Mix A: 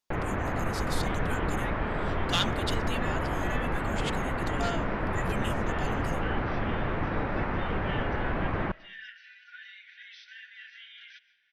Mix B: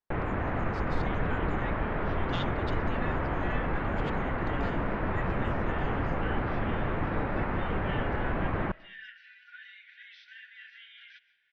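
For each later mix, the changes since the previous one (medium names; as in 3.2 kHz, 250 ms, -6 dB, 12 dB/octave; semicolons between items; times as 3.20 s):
speech -8.5 dB; master: add distance through air 170 m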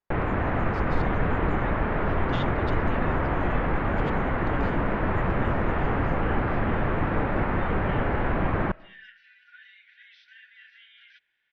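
first sound +5.0 dB; second sound: send off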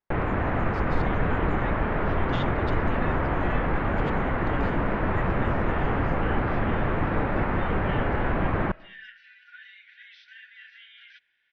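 second sound +3.5 dB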